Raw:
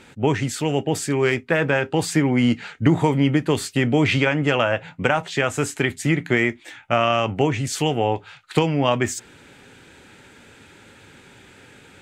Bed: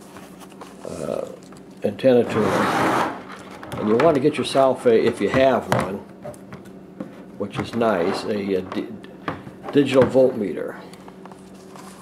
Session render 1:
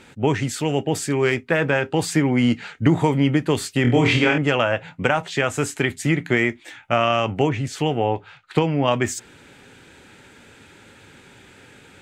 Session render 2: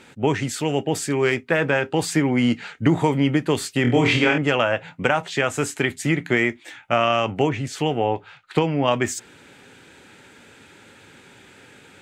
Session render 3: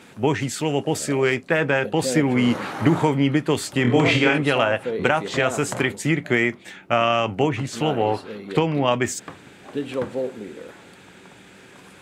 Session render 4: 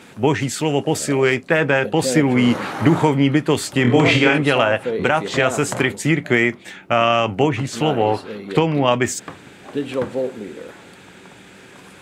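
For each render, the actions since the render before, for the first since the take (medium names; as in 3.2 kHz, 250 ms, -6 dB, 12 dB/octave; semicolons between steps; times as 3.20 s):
3.82–4.38 s: flutter echo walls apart 4.2 m, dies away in 0.36 s; 7.49–8.88 s: treble shelf 4.6 kHz -11.5 dB
bass shelf 71 Hz -11.5 dB
add bed -11 dB
trim +3.5 dB; peak limiter -2 dBFS, peak gain reduction 2.5 dB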